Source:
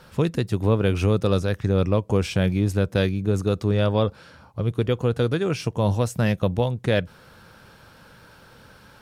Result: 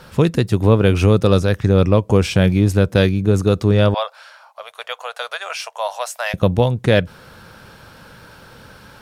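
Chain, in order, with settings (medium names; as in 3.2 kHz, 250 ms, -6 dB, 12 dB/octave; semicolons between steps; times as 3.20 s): 3.94–6.34 s: elliptic high-pass 630 Hz, stop band 50 dB; trim +7 dB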